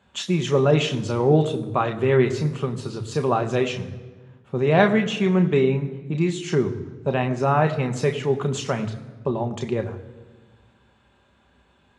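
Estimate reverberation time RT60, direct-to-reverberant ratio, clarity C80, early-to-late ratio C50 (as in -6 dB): 1.5 s, 5.0 dB, 14.0 dB, 13.0 dB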